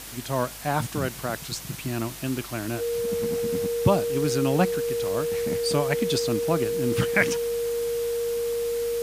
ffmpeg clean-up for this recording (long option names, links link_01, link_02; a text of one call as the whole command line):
ffmpeg -i in.wav -af "adeclick=threshold=4,bandreject=frequency=50.8:width_type=h:width=4,bandreject=frequency=101.6:width_type=h:width=4,bandreject=frequency=152.4:width_type=h:width=4,bandreject=frequency=203.2:width_type=h:width=4,bandreject=frequency=254:width_type=h:width=4,bandreject=frequency=470:width=30,afwtdn=0.011" out.wav